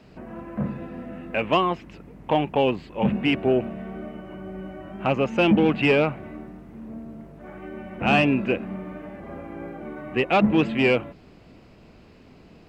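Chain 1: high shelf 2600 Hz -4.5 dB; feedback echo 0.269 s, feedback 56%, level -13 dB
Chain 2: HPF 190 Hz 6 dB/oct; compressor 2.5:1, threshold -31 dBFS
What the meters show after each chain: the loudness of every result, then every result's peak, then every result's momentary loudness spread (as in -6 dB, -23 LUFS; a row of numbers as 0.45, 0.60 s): -24.0, -34.0 LUFS; -8.5, -16.5 dBFS; 18, 19 LU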